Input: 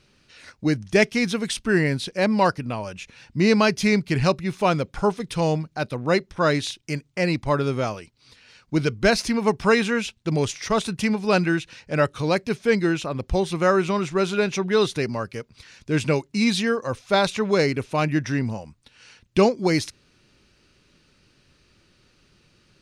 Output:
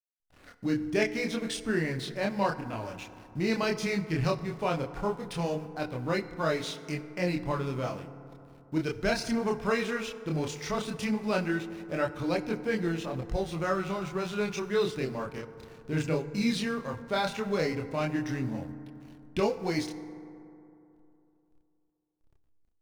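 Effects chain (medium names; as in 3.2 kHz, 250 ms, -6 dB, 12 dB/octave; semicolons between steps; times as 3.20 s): in parallel at +2 dB: compression, threshold -30 dBFS, peak gain reduction 17 dB; on the sum: added noise pink -49 dBFS; hysteresis with a dead band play -30.5 dBFS; chorus voices 2, 0.16 Hz, delay 27 ms, depth 4.3 ms; FDN reverb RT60 2.9 s, high-frequency decay 0.35×, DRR 11.5 dB; trim -8 dB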